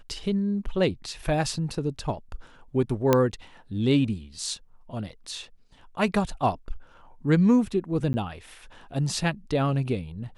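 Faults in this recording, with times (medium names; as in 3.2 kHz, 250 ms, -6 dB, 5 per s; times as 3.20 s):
3.13 s: pop -6 dBFS
8.13–8.14 s: dropout 10 ms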